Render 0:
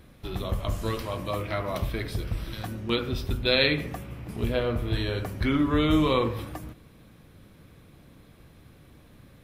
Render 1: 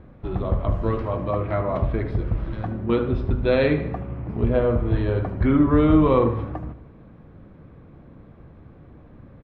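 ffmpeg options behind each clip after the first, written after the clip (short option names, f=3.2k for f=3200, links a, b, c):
-af "lowpass=1.2k,aecho=1:1:76|152|228|304:0.2|0.0898|0.0404|0.0182,volume=6.5dB"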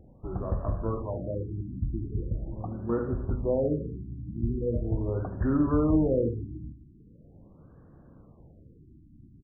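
-af "afftfilt=real='re*lt(b*sr/1024,340*pow(1900/340,0.5+0.5*sin(2*PI*0.41*pts/sr)))':imag='im*lt(b*sr/1024,340*pow(1900/340,0.5+0.5*sin(2*PI*0.41*pts/sr)))':win_size=1024:overlap=0.75,volume=-7dB"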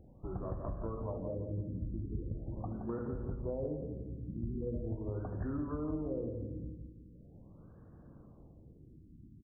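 -filter_complex "[0:a]acompressor=threshold=-31dB:ratio=6,asplit=2[a][b];[b]adelay=170,lowpass=f=860:p=1,volume=-5.5dB,asplit=2[c][d];[d]adelay=170,lowpass=f=860:p=1,volume=0.45,asplit=2[e][f];[f]adelay=170,lowpass=f=860:p=1,volume=0.45,asplit=2[g][h];[h]adelay=170,lowpass=f=860:p=1,volume=0.45,asplit=2[i][j];[j]adelay=170,lowpass=f=860:p=1,volume=0.45[k];[a][c][e][g][i][k]amix=inputs=6:normalize=0,volume=-4dB"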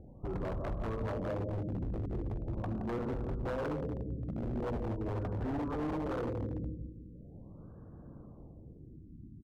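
-af "lowpass=1.4k,aeval=exprs='0.0178*(abs(mod(val(0)/0.0178+3,4)-2)-1)':c=same,volume=5dB"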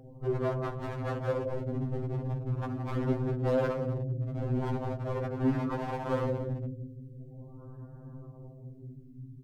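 -af "afftfilt=real='re*2.45*eq(mod(b,6),0)':imag='im*2.45*eq(mod(b,6),0)':win_size=2048:overlap=0.75,volume=7.5dB"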